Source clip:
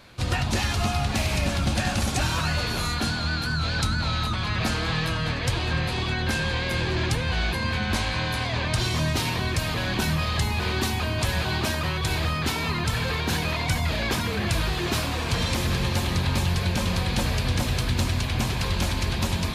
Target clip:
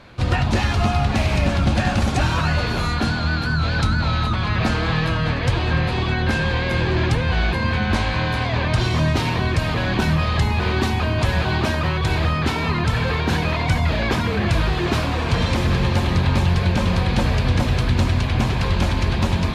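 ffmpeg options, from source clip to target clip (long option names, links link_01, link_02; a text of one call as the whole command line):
ffmpeg -i in.wav -af "aemphasis=mode=reproduction:type=75kf,volume=6.5dB" out.wav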